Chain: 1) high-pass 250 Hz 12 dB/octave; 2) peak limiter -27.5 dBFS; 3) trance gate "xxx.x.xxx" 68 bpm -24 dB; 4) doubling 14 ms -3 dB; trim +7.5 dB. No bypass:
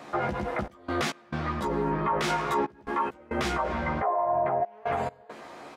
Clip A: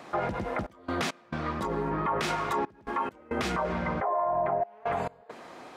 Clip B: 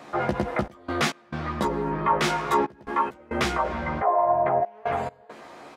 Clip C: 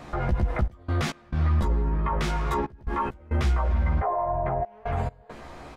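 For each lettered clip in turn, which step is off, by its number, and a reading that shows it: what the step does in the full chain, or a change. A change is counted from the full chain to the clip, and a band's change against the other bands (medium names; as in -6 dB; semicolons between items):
4, loudness change -1.5 LU; 2, mean gain reduction 1.5 dB; 1, 125 Hz band +13.5 dB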